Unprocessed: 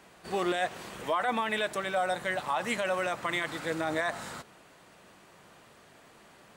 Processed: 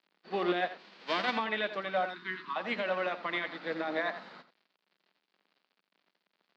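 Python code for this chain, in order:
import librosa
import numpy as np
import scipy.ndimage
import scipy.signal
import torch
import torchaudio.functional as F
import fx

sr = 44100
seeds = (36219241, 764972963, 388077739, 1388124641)

p1 = fx.envelope_flatten(x, sr, power=0.3, at=(0.78, 1.36), fade=0.02)
p2 = fx.cheby1_bandstop(p1, sr, low_hz=400.0, high_hz=960.0, order=5, at=(2.05, 2.56))
p3 = fx.quant_dither(p2, sr, seeds[0], bits=8, dither='none')
p4 = scipy.signal.sosfilt(scipy.signal.cheby1(4, 1.0, [180.0, 4600.0], 'bandpass', fs=sr, output='sos'), p3)
p5 = p4 + fx.echo_single(p4, sr, ms=85, db=-9.0, dry=0)
y = fx.upward_expand(p5, sr, threshold_db=-51.0, expansion=1.5)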